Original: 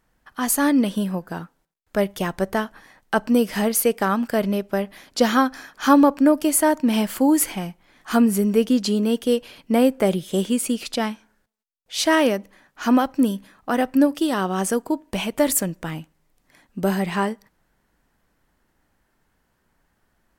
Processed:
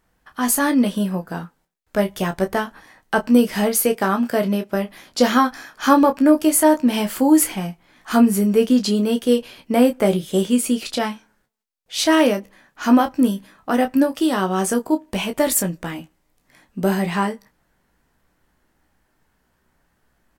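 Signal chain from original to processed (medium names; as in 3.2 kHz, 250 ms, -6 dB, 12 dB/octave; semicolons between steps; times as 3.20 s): 3.95–4.73 s: high-pass 95 Hz; early reflections 16 ms -8 dB, 29 ms -9.5 dB; trim +1 dB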